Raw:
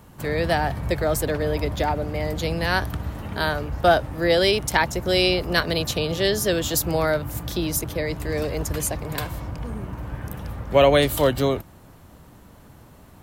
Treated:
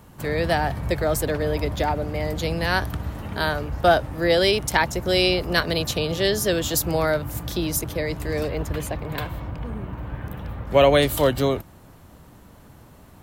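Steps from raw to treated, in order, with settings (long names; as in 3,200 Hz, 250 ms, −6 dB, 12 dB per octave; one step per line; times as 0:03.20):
0:08.48–0:10.67: flat-topped bell 7,900 Hz −10.5 dB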